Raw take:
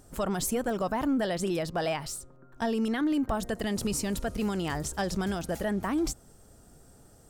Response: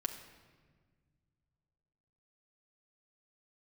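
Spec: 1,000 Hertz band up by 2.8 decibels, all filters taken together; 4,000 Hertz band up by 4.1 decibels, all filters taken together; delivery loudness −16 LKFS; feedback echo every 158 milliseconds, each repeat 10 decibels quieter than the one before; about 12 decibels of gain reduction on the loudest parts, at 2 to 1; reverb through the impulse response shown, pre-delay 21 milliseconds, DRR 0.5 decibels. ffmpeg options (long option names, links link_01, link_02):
-filter_complex "[0:a]equalizer=frequency=1000:width_type=o:gain=3.5,equalizer=frequency=4000:width_type=o:gain=5.5,acompressor=threshold=-47dB:ratio=2,aecho=1:1:158|316|474|632:0.316|0.101|0.0324|0.0104,asplit=2[link_01][link_02];[1:a]atrim=start_sample=2205,adelay=21[link_03];[link_02][link_03]afir=irnorm=-1:irlink=0,volume=-1dB[link_04];[link_01][link_04]amix=inputs=2:normalize=0,volume=21.5dB"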